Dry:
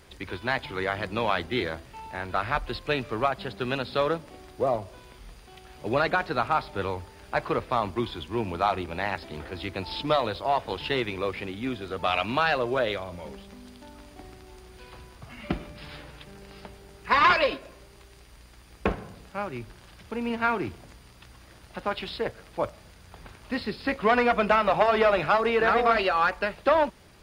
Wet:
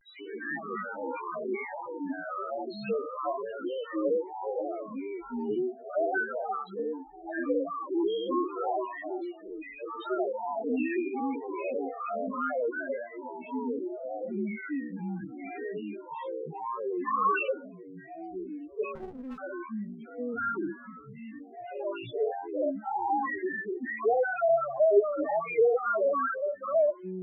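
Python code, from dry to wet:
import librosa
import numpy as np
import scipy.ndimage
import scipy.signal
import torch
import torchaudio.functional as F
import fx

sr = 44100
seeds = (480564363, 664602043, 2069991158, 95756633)

y = fx.spec_dilate(x, sr, span_ms=120)
y = fx.filter_lfo_bandpass(y, sr, shape='square', hz=2.6, low_hz=460.0, high_hz=2500.0, q=0.85)
y = fx.spec_topn(y, sr, count=2)
y = fx.dynamic_eq(y, sr, hz=400.0, q=4.7, threshold_db=-38.0, ratio=4.0, max_db=5, at=(24.89, 25.8))
y = fx.echo_pitch(y, sr, ms=87, semitones=-5, count=2, db_per_echo=-3.0)
y = fx.riaa(y, sr, side='recording', at=(6.18, 6.79))
y = fx.vibrato(y, sr, rate_hz=0.71, depth_cents=88.0)
y = fx.running_max(y, sr, window=33, at=(18.95, 19.38))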